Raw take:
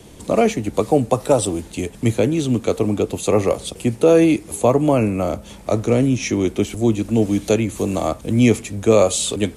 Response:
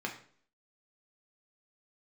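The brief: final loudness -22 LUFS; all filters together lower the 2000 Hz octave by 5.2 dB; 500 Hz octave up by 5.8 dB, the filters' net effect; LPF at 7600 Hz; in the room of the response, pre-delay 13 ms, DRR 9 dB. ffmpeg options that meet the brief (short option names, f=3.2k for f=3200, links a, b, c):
-filter_complex "[0:a]lowpass=7.6k,equalizer=f=500:t=o:g=7,equalizer=f=2k:t=o:g=-7,asplit=2[a][b];[1:a]atrim=start_sample=2205,adelay=13[c];[b][c]afir=irnorm=-1:irlink=0,volume=-12.5dB[d];[a][d]amix=inputs=2:normalize=0,volume=-7.5dB"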